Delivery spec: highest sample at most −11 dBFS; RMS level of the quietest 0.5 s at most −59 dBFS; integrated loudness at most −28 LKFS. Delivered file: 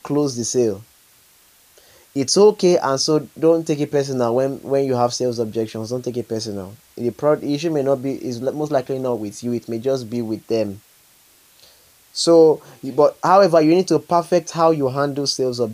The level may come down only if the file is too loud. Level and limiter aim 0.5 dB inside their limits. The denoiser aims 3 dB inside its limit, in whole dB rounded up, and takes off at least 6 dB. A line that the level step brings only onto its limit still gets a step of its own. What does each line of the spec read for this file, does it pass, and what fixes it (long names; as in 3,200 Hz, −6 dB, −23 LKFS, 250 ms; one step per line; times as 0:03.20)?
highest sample −1.5 dBFS: out of spec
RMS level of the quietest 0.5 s −53 dBFS: out of spec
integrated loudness −19.0 LKFS: out of spec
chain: level −9.5 dB
brickwall limiter −11.5 dBFS